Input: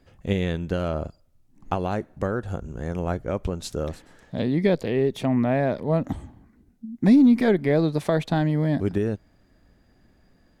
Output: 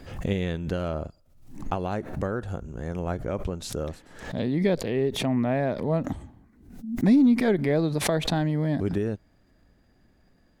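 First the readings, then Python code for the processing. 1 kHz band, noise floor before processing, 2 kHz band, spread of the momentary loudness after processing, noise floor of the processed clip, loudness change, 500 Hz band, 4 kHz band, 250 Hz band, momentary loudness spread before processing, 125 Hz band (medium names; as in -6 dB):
-2.5 dB, -61 dBFS, -1.5 dB, 14 LU, -62 dBFS, -2.5 dB, -2.5 dB, +3.0 dB, -2.5 dB, 14 LU, -2.5 dB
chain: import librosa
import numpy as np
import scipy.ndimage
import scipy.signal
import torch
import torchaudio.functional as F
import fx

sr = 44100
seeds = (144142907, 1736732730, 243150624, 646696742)

y = fx.pre_swell(x, sr, db_per_s=77.0)
y = F.gain(torch.from_numpy(y), -3.0).numpy()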